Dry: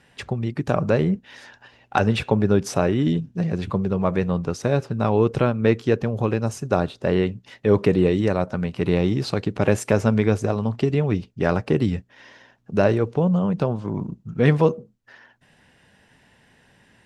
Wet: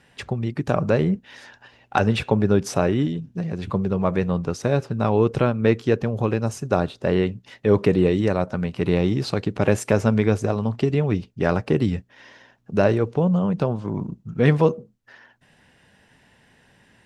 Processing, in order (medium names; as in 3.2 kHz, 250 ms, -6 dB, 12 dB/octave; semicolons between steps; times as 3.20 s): 3.05–3.70 s: compression, threshold -23 dBFS, peak gain reduction 6 dB